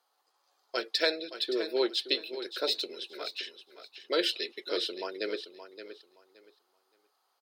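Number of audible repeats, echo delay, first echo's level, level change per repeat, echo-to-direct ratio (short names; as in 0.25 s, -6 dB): 2, 0.571 s, -11.5 dB, -13.5 dB, -11.5 dB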